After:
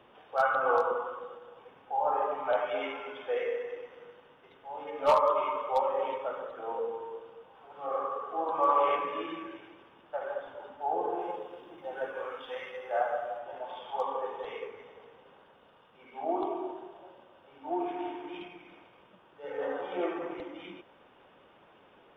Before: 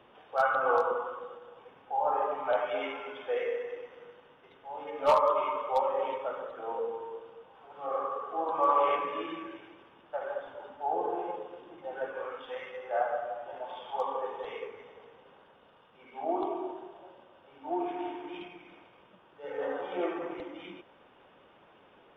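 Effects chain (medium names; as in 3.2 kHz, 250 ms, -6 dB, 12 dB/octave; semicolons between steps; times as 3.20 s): 11.21–13.39 s: treble shelf 4.6 kHz +8.5 dB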